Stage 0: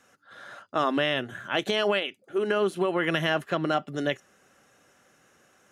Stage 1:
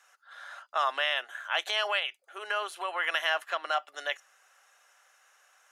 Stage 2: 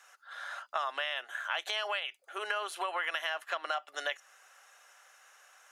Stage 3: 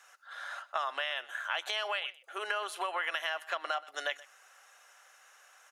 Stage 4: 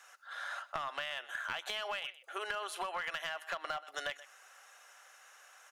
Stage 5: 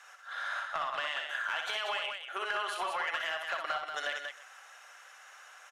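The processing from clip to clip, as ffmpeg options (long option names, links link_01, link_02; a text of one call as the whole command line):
ffmpeg -i in.wav -af "highpass=frequency=740:width=0.5412,highpass=frequency=740:width=1.3066" out.wav
ffmpeg -i in.wav -af "acompressor=threshold=-34dB:ratio=6,volume=3.5dB" out.wav
ffmpeg -i in.wav -af "aecho=1:1:126:0.0944" out.wav
ffmpeg -i in.wav -af "aeval=exprs='clip(val(0),-1,0.0376)':channel_layout=same,acompressor=threshold=-37dB:ratio=3,volume=1dB" out.wav
ffmpeg -i in.wav -filter_complex "[0:a]asplit=2[link_01][link_02];[link_02]highpass=frequency=720:poles=1,volume=9dB,asoftclip=type=tanh:threshold=-20.5dB[link_03];[link_01][link_03]amix=inputs=2:normalize=0,lowpass=frequency=3800:poles=1,volume=-6dB,asplit=2[link_04][link_05];[link_05]aecho=0:1:61.22|186.6:0.562|0.501[link_06];[link_04][link_06]amix=inputs=2:normalize=0" out.wav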